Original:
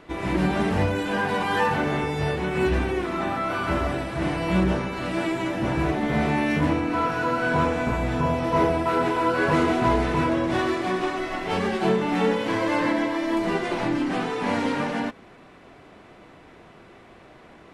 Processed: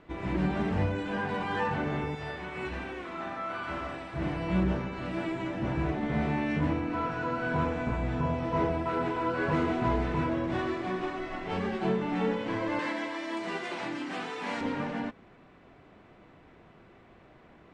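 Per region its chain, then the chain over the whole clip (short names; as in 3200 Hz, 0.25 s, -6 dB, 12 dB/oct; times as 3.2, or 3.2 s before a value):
2.15–4.14 low shelf 440 Hz -11.5 dB + flutter echo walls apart 9.8 m, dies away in 0.44 s
12.79–14.61 HPF 130 Hz + tilt +3 dB/oct
whole clip: steep low-pass 8800 Hz 36 dB/oct; tone controls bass +4 dB, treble -7 dB; gain -8 dB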